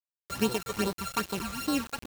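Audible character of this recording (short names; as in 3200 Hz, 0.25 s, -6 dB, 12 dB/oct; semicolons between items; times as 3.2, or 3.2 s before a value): a buzz of ramps at a fixed pitch in blocks of 32 samples; phasing stages 12, 2.5 Hz, lowest notch 270–2300 Hz; tremolo triangle 2.9 Hz, depth 60%; a quantiser's noise floor 8-bit, dither none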